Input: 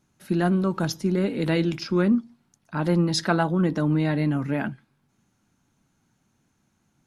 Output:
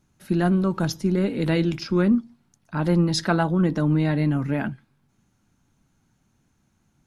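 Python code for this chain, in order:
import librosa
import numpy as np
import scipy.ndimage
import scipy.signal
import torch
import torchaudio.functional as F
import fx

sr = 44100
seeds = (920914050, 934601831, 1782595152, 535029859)

y = fx.low_shelf(x, sr, hz=84.0, db=10.5)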